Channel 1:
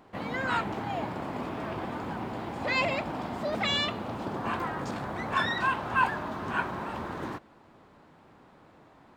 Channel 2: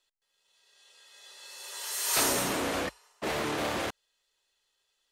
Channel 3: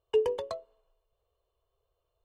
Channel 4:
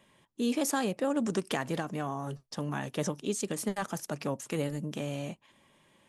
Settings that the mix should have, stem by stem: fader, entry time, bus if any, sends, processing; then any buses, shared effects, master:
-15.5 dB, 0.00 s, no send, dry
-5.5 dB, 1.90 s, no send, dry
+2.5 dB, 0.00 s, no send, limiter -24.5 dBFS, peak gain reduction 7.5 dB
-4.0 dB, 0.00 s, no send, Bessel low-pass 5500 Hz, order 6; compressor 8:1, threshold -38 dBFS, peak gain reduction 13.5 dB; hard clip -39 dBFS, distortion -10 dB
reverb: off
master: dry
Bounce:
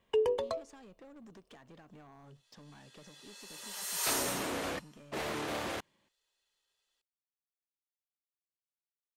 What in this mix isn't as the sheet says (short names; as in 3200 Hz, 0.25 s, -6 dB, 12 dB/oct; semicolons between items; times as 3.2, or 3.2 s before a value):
stem 1: muted; stem 4 -4.0 dB -> -10.5 dB